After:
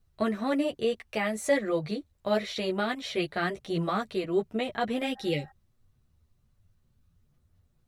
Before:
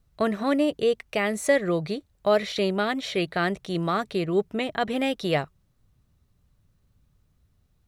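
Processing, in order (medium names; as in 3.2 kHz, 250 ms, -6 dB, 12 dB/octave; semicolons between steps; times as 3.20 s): chorus voices 6, 1.1 Hz, delay 11 ms, depth 3 ms; spectral replace 5.18–5.49 s, 600–1900 Hz before; trim -1 dB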